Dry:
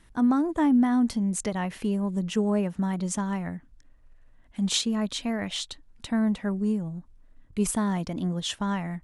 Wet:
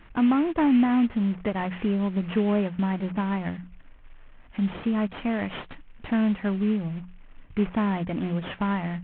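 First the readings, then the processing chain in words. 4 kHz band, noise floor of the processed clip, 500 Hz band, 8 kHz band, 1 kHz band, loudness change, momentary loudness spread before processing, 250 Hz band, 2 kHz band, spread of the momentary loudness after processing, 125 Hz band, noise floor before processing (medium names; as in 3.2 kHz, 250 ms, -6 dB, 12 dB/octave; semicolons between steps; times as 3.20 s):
-9.0 dB, -49 dBFS, +2.0 dB, under -40 dB, +2.0 dB, +1.0 dB, 11 LU, +1.5 dB, +3.0 dB, 12 LU, +1.5 dB, -56 dBFS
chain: CVSD coder 16 kbps; hum notches 60/120/180 Hz; in parallel at +2 dB: compression, threshold -37 dBFS, peak gain reduction 17 dB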